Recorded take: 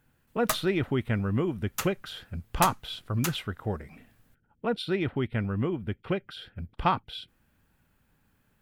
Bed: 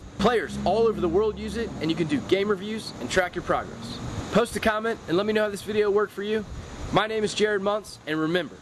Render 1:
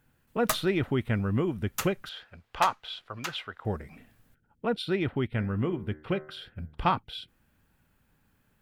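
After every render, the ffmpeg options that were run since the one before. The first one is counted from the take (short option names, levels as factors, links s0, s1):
-filter_complex "[0:a]asettb=1/sr,asplit=3[s0][s1][s2];[s0]atrim=end=2.094[s3];[s1]atrim=start=2.09:end=3.65,asetpts=PTS-STARTPTS,afade=t=in:d=0.004:c=qsin,afade=t=out:st=1.556:d=0.004:c=qsin,acrossover=split=470 5500:gain=0.158 1 0.158[s4][s5][s6];[s4][s5][s6]amix=inputs=3:normalize=0[s7];[s2]atrim=start=3.646[s8];[s3][s7]acrossfade=d=0.004:c1=hsin:c2=qsin[s9];[s9][s8]acrossfade=d=0.004:c1=qsin:c2=hsin,asettb=1/sr,asplit=3[s10][s11][s12];[s10]atrim=end=5.274[s13];[s11]atrim=start=5.27:end=6.92,asetpts=PTS-STARTPTS,afade=t=in:d=0.004:c=qsin,afade=t=out:st=1.646:d=0.004:c=qsin,bandreject=f=76.33:t=h:w=4,bandreject=f=152.66:t=h:w=4,bandreject=f=228.99:t=h:w=4,bandreject=f=305.32:t=h:w=4,bandreject=f=381.65:t=h:w=4,bandreject=f=457.98:t=h:w=4,bandreject=f=534.31:t=h:w=4,bandreject=f=610.64:t=h:w=4,bandreject=f=686.97:t=h:w=4,bandreject=f=763.3:t=h:w=4,bandreject=f=839.63:t=h:w=4,bandreject=f=915.96:t=h:w=4,bandreject=f=992.29:t=h:w=4,bandreject=f=1068.62:t=h:w=4,bandreject=f=1144.95:t=h:w=4,bandreject=f=1221.28:t=h:w=4,bandreject=f=1297.61:t=h:w=4,bandreject=f=1373.94:t=h:w=4,bandreject=f=1450.27:t=h:w=4,bandreject=f=1526.6:t=h:w=4,bandreject=f=1602.93:t=h:w=4,bandreject=f=1679.26:t=h:w=4,bandreject=f=1755.59:t=h:w=4,bandreject=f=1831.92:t=h:w=4,bandreject=f=1908.25:t=h:w=4,bandreject=f=1984.58:t=h:w=4,bandreject=f=2060.91:t=h:w=4[s14];[s12]atrim=start=6.916[s15];[s13][s14]acrossfade=d=0.004:c1=hsin:c2=qsin[s16];[s16][s15]acrossfade=d=0.004:c1=qsin:c2=hsin"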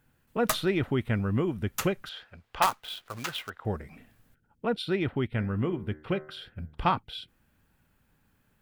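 -filter_complex "[0:a]asettb=1/sr,asplit=3[s0][s1][s2];[s0]atrim=end=2.624[s3];[s1]atrim=start=2.62:end=3.5,asetpts=PTS-STARTPTS,afade=t=in:d=0.004:c=qsin,afade=t=out:st=0.876:d=0.004:c=qsin,acrusher=bits=2:mode=log:mix=0:aa=0.000001[s4];[s2]atrim=start=3.496[s5];[s3][s4]acrossfade=d=0.004:c1=hsin:c2=qsin[s6];[s6][s5]acrossfade=d=0.004:c1=qsin:c2=hsin"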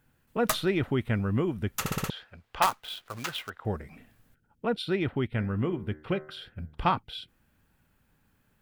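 -filter_complex "[0:a]asplit=6[s0][s1][s2][s3][s4][s5];[s0]atrim=end=1.862[s6];[s1]atrim=start=1.798:end=1.862[s7];[s2]atrim=start=1.798:end=1.862[s8];[s3]atrim=start=1.798:end=1.862[s9];[s4]atrim=start=1.798:end=1.862[s10];[s5]atrim=start=2.098[s11];[s6][s7]acrossfade=d=0.004:c1=hsin:c2=hsin[s12];[s12][s8]acrossfade=d=0.004:c1=hsin:c2=hsin[s13];[s13][s9]acrossfade=d=0.004:c1=hsin:c2=hsin[s14];[s14][s10]acrossfade=d=0.004:c1=hsin:c2=hsin[s15];[s15][s11]acrossfade=d=0.004:c1=hsin:c2=hsin"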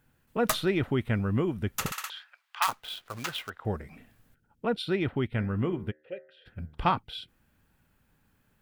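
-filter_complex "[0:a]asplit=3[s0][s1][s2];[s0]afade=t=out:st=1.9:d=0.02[s3];[s1]highpass=f=990:w=0.5412,highpass=f=990:w=1.3066,afade=t=in:st=1.9:d=0.02,afade=t=out:st=2.67:d=0.02[s4];[s2]afade=t=in:st=2.67:d=0.02[s5];[s3][s4][s5]amix=inputs=3:normalize=0,asplit=3[s6][s7][s8];[s6]afade=t=out:st=5.9:d=0.02[s9];[s7]asplit=3[s10][s11][s12];[s10]bandpass=f=530:t=q:w=8,volume=1[s13];[s11]bandpass=f=1840:t=q:w=8,volume=0.501[s14];[s12]bandpass=f=2480:t=q:w=8,volume=0.355[s15];[s13][s14][s15]amix=inputs=3:normalize=0,afade=t=in:st=5.9:d=0.02,afade=t=out:st=6.45:d=0.02[s16];[s8]afade=t=in:st=6.45:d=0.02[s17];[s9][s16][s17]amix=inputs=3:normalize=0"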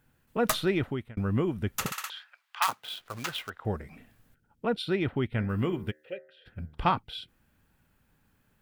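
-filter_complex "[0:a]asettb=1/sr,asplit=3[s0][s1][s2];[s0]atrim=end=1.854[s3];[s1]atrim=start=1.85:end=3,asetpts=PTS-STARTPTS,afade=t=in:d=0.004:c=qsin,afade=t=out:st=1.146:d=0.004:c=qsin,highpass=f=110:w=0.5412,highpass=f=110:w=1.3066[s4];[s2]atrim=start=2.996[s5];[s3][s4]acrossfade=d=0.004:c1=hsin:c2=qsin[s6];[s6][s5]acrossfade=d=0.004:c1=qsin:c2=hsin,asettb=1/sr,asplit=3[s7][s8][s9];[s7]atrim=end=5.494[s10];[s8]atrim=start=5.49:end=6.17,asetpts=PTS-STARTPTS,afade=t=in:d=0.004:c=qsin,afade=t=out:st=0.676:d=0.004:c=qsin,highshelf=f=2900:g=11.5[s11];[s9]atrim=start=6.166[s12];[s10][s11]acrossfade=d=0.004:c1=hsin:c2=qsin[s13];[s13][s12]acrossfade=d=0.004:c1=qsin:c2=hsin,asplit=2[s14][s15];[s14]atrim=end=1.17,asetpts=PTS-STARTPTS,afade=t=out:st=0.76:d=0.41[s16];[s15]atrim=start=1.17,asetpts=PTS-STARTPTS,afade=t=in:d=0.004:c=hsin[s17];[s16][s17]concat=n=2:v=0:a=1"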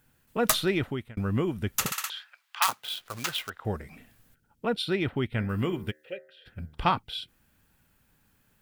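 -af "highshelf=f=2900:g=7"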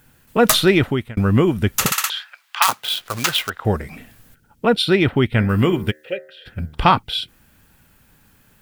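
-af "alimiter=level_in=3.98:limit=0.891:release=50:level=0:latency=1"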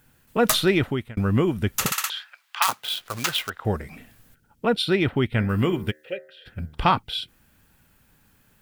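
-af "volume=0.531"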